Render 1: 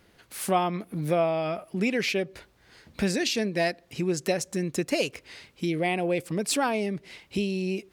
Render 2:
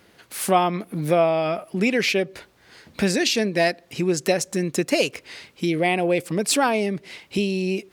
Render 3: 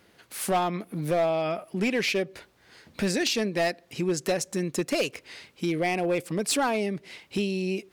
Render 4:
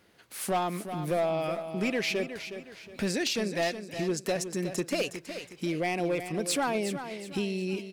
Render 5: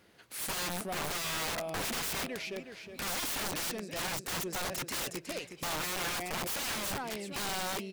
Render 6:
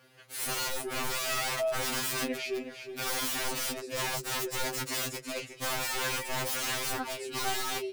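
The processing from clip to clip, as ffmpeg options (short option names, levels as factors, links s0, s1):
-af "highpass=f=140:p=1,volume=2"
-af "volume=5.31,asoftclip=hard,volume=0.188,volume=0.596"
-af "aecho=1:1:365|730|1095|1460:0.316|0.114|0.041|0.0148,volume=0.668"
-af "aeval=exprs='(mod(31.6*val(0)+1,2)-1)/31.6':c=same"
-af "afftfilt=real='re*2.45*eq(mod(b,6),0)':imag='im*2.45*eq(mod(b,6),0)':win_size=2048:overlap=0.75,volume=1.78"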